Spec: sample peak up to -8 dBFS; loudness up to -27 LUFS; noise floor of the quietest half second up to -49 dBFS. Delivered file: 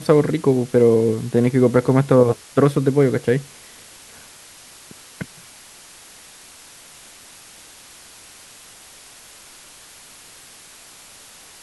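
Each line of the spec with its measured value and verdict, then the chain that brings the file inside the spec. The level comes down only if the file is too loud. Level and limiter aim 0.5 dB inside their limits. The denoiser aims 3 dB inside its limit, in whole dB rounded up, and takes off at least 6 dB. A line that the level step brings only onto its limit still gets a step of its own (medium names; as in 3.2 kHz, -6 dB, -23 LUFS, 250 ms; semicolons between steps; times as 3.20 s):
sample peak -2.5 dBFS: fail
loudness -17.5 LUFS: fail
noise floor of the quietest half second -44 dBFS: fail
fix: trim -10 dB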